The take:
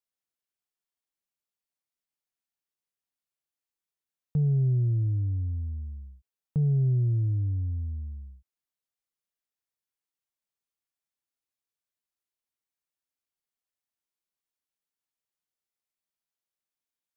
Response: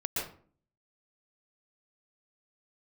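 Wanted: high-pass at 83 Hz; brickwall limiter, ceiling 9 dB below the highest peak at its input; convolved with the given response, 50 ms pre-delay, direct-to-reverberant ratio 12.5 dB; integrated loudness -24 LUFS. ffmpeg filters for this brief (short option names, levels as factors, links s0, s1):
-filter_complex "[0:a]highpass=83,alimiter=level_in=1.58:limit=0.0631:level=0:latency=1,volume=0.631,asplit=2[s0][s1];[1:a]atrim=start_sample=2205,adelay=50[s2];[s1][s2]afir=irnorm=-1:irlink=0,volume=0.126[s3];[s0][s3]amix=inputs=2:normalize=0,volume=3.35"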